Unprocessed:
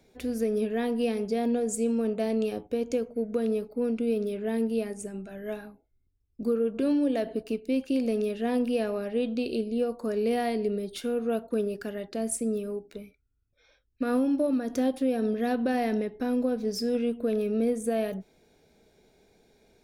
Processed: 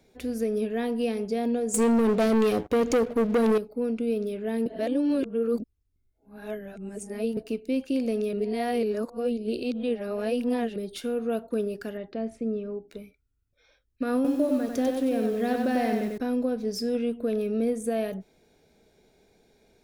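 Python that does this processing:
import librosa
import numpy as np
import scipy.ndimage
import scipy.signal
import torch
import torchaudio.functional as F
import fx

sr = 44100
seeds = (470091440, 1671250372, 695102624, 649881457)

y = fx.leveller(x, sr, passes=3, at=(1.74, 3.58))
y = fx.air_absorb(y, sr, metres=270.0, at=(11.97, 12.88))
y = fx.echo_crushed(y, sr, ms=95, feedback_pct=35, bits=8, wet_db=-4, at=(14.15, 16.18))
y = fx.edit(y, sr, fx.reverse_span(start_s=4.66, length_s=2.71),
    fx.reverse_span(start_s=8.33, length_s=2.43), tone=tone)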